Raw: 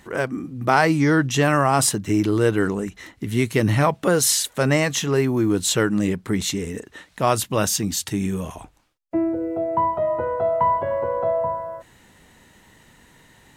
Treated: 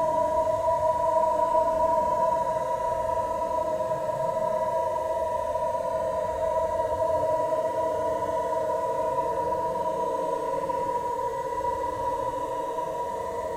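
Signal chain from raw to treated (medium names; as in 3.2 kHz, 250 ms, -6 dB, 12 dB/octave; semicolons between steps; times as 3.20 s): frequency shift -20 Hz; echo that smears into a reverb 869 ms, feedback 49%, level -7.5 dB; Paulstretch 27×, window 0.05 s, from 12.26 s; trim +3 dB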